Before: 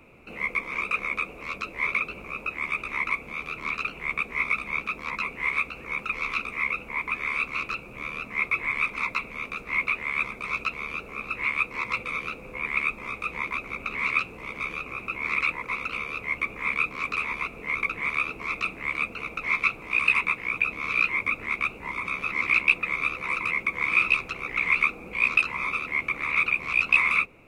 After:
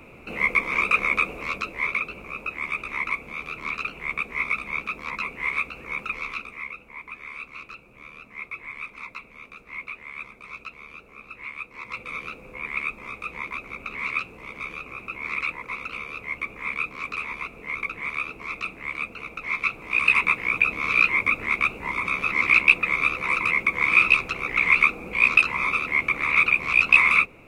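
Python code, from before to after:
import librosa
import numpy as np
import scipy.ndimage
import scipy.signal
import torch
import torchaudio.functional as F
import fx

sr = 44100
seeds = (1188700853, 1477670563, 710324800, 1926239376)

y = fx.gain(x, sr, db=fx.line((1.33, 6.5), (1.92, 0.0), (6.06, 0.0), (6.79, -10.0), (11.71, -10.0), (12.14, -2.5), (19.49, -2.5), (20.31, 4.5)))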